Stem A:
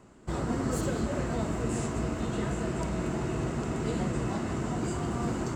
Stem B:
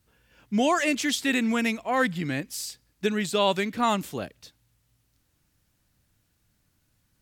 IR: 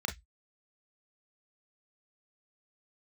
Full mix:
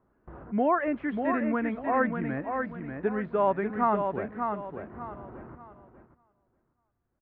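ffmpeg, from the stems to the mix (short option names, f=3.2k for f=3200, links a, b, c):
-filter_complex "[0:a]alimiter=level_in=4.5dB:limit=-24dB:level=0:latency=1:release=40,volume=-4.5dB,acompressor=threshold=-38dB:ratio=4,volume=-2dB,asplit=2[a][b];[b]volume=-10dB[c];[1:a]acrossover=split=2600[d][e];[e]acompressor=threshold=-46dB:ratio=4:attack=1:release=60[f];[d][f]amix=inputs=2:normalize=0,equalizer=f=3.9k:w=1.5:g=2.5,volume=0dB,asplit=3[g][h][i];[h]volume=-5.5dB[j];[i]apad=whole_len=245158[k];[a][k]sidechaincompress=threshold=-51dB:ratio=8:attack=16:release=468[l];[c][j]amix=inputs=2:normalize=0,aecho=0:1:591|1182|1773|2364|2955:1|0.32|0.102|0.0328|0.0105[m];[l][g][m]amix=inputs=3:normalize=0,equalizer=f=170:t=o:w=2.1:g=-4.5,agate=range=-10dB:threshold=-53dB:ratio=16:detection=peak,lowpass=f=1.6k:w=0.5412,lowpass=f=1.6k:w=1.3066"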